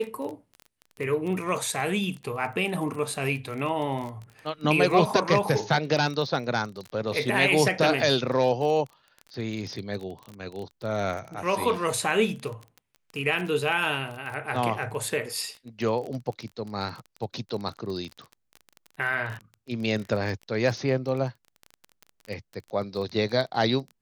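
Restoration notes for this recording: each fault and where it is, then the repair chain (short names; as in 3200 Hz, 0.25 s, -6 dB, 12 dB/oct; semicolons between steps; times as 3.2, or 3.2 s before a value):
crackle 22/s -32 dBFS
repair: de-click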